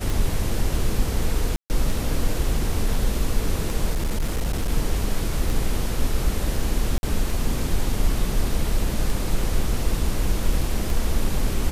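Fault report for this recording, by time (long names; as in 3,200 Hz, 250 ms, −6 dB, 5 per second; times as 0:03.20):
scratch tick 33 1/3 rpm
0:01.56–0:01.70: drop-out 139 ms
0:03.90–0:04.69: clipping −19 dBFS
0:06.98–0:07.03: drop-out 51 ms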